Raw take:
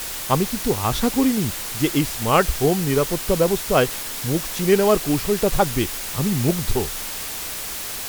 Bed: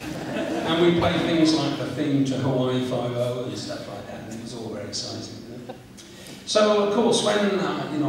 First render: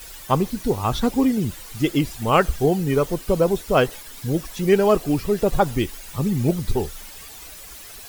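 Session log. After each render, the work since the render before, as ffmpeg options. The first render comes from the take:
ffmpeg -i in.wav -af "afftdn=noise_reduction=13:noise_floor=-30" out.wav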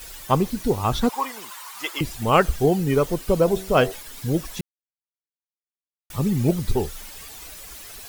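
ffmpeg -i in.wav -filter_complex "[0:a]asettb=1/sr,asplit=3[link_01][link_02][link_03];[link_01]atrim=end=1.094[link_04];[link_02]atrim=start=1.09:end=2.01,asetpts=PTS-STARTPTS,afade=type=in:duration=0.004:curve=qsin,afade=type=out:start_time=0.916:duration=0.004:curve=qsin,highpass=frequency=1000:width_type=q:width=4.4[link_05];[link_03]atrim=start=2.006[link_06];[link_04][link_05]acrossfade=duration=0.004:curve1=hsin:curve2=qsin[link_07];[link_07][link_06]acrossfade=duration=0.004:curve1=qsin:curve2=hsin,asplit=3[link_08][link_09][link_10];[link_08]afade=type=out:start_time=3.44:duration=0.02[link_11];[link_09]bandreject=frequency=95.15:width_type=h:width=4,bandreject=frequency=190.3:width_type=h:width=4,bandreject=frequency=285.45:width_type=h:width=4,bandreject=frequency=380.6:width_type=h:width=4,bandreject=frequency=475.75:width_type=h:width=4,bandreject=frequency=570.9:width_type=h:width=4,bandreject=frequency=666.05:width_type=h:width=4,bandreject=frequency=761.2:width_type=h:width=4,afade=type=in:start_time=3.44:duration=0.02,afade=type=out:start_time=3.91:duration=0.02[link_12];[link_10]afade=type=in:start_time=3.91:duration=0.02[link_13];[link_11][link_12][link_13]amix=inputs=3:normalize=0,asplit=3[link_14][link_15][link_16];[link_14]atrim=end=4.61,asetpts=PTS-STARTPTS,afade=type=out:start_time=4.606:duration=0.004:curve=hsin[link_17];[link_15]atrim=start=4.61:end=6.1,asetpts=PTS-STARTPTS,volume=0[link_18];[link_16]atrim=start=6.1,asetpts=PTS-STARTPTS,afade=type=in:duration=0.004:curve=hsin[link_19];[link_17][link_18][link_19]concat=n=3:v=0:a=1" out.wav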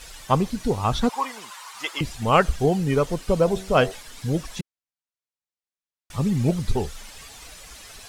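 ffmpeg -i in.wav -af "lowpass=8700,equalizer=frequency=350:width=2.8:gain=-4.5" out.wav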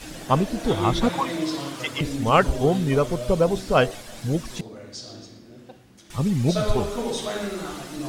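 ffmpeg -i in.wav -i bed.wav -filter_complex "[1:a]volume=-8dB[link_01];[0:a][link_01]amix=inputs=2:normalize=0" out.wav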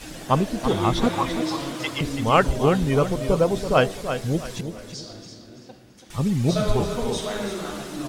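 ffmpeg -i in.wav -af "aecho=1:1:333|666|999|1332:0.355|0.11|0.0341|0.0106" out.wav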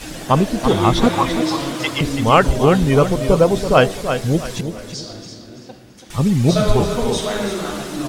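ffmpeg -i in.wav -af "volume=6.5dB,alimiter=limit=-1dB:level=0:latency=1" out.wav

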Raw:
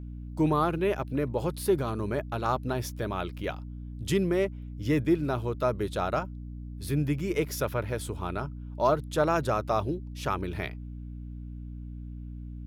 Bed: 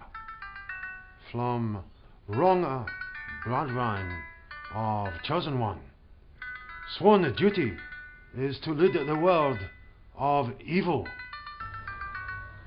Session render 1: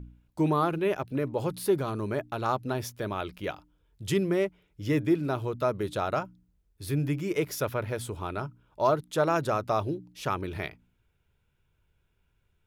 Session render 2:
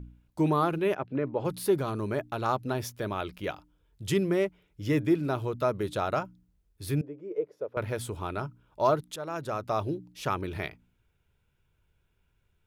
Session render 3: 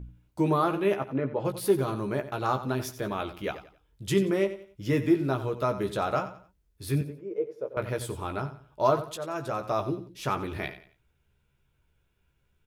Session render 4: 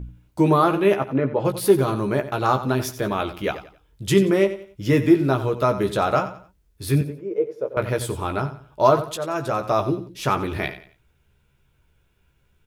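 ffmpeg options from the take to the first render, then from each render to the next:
ffmpeg -i in.wav -af "bandreject=frequency=60:width_type=h:width=4,bandreject=frequency=120:width_type=h:width=4,bandreject=frequency=180:width_type=h:width=4,bandreject=frequency=240:width_type=h:width=4,bandreject=frequency=300:width_type=h:width=4" out.wav
ffmpeg -i in.wav -filter_complex "[0:a]asplit=3[link_01][link_02][link_03];[link_01]afade=type=out:start_time=0.94:duration=0.02[link_04];[link_02]highpass=130,lowpass=2400,afade=type=in:start_time=0.94:duration=0.02,afade=type=out:start_time=1.44:duration=0.02[link_05];[link_03]afade=type=in:start_time=1.44:duration=0.02[link_06];[link_04][link_05][link_06]amix=inputs=3:normalize=0,asettb=1/sr,asplit=3[link_07][link_08][link_09];[link_07]atrim=end=7.014[link_10];[link_08]atrim=start=7.01:end=7.77,asetpts=PTS-STARTPTS,afade=type=in:duration=0.004:curve=qsin,afade=type=out:start_time=0.756:duration=0.004:curve=qsin,bandpass=frequency=470:width_type=q:width=4[link_11];[link_09]atrim=start=7.766[link_12];[link_10][link_11]acrossfade=duration=0.004:curve1=hsin:curve2=qsin[link_13];[link_13][link_12]acrossfade=duration=0.004:curve1=qsin:curve2=hsin,asplit=2[link_14][link_15];[link_14]atrim=end=9.16,asetpts=PTS-STARTPTS,afade=type=out:start_time=9.156:duration=0.004:curve=hsin:silence=0.16788[link_16];[link_15]atrim=start=9.16,asetpts=PTS-STARTPTS,afade=type=in:duration=0.78:silence=0.16788[link_17];[link_16][link_17]concat=n=2:v=0:a=1" out.wav
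ffmpeg -i in.wav -filter_complex "[0:a]asplit=2[link_01][link_02];[link_02]adelay=15,volume=-6.5dB[link_03];[link_01][link_03]amix=inputs=2:normalize=0,aecho=1:1:90|180|270:0.224|0.0694|0.0215" out.wav
ffmpeg -i in.wav -af "volume=7.5dB,alimiter=limit=-3dB:level=0:latency=1" out.wav

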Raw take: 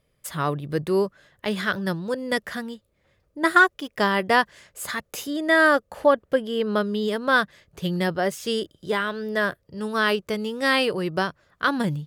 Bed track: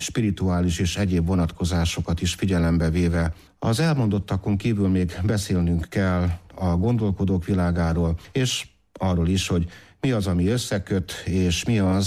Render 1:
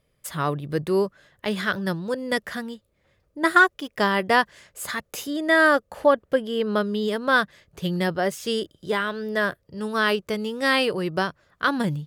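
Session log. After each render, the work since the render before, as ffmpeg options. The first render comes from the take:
ffmpeg -i in.wav -af anull out.wav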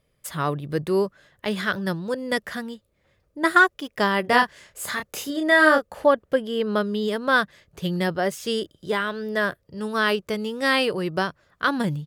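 ffmpeg -i in.wav -filter_complex "[0:a]asplit=3[link_01][link_02][link_03];[link_01]afade=type=out:start_time=4.24:duration=0.02[link_04];[link_02]asplit=2[link_05][link_06];[link_06]adelay=29,volume=-5dB[link_07];[link_05][link_07]amix=inputs=2:normalize=0,afade=type=in:start_time=4.24:duration=0.02,afade=type=out:start_time=5.85:duration=0.02[link_08];[link_03]afade=type=in:start_time=5.85:duration=0.02[link_09];[link_04][link_08][link_09]amix=inputs=3:normalize=0" out.wav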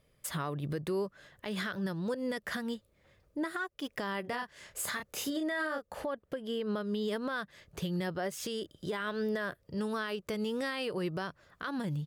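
ffmpeg -i in.wav -af "acompressor=threshold=-28dB:ratio=12,alimiter=level_in=2dB:limit=-24dB:level=0:latency=1:release=112,volume=-2dB" out.wav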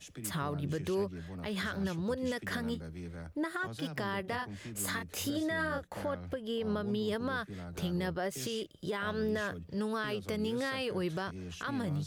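ffmpeg -i in.wav -i bed.wav -filter_complex "[1:a]volume=-22.5dB[link_01];[0:a][link_01]amix=inputs=2:normalize=0" out.wav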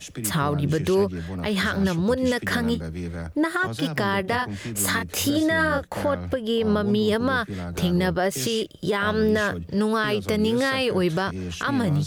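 ffmpeg -i in.wav -af "volume=12dB" out.wav

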